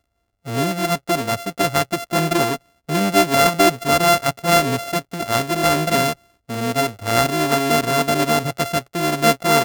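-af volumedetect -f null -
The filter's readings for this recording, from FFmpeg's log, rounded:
mean_volume: -19.3 dB
max_volume: -2.7 dB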